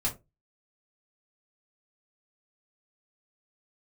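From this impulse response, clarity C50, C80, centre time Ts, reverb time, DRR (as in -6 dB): 14.0 dB, 22.0 dB, 15 ms, 0.25 s, -5.0 dB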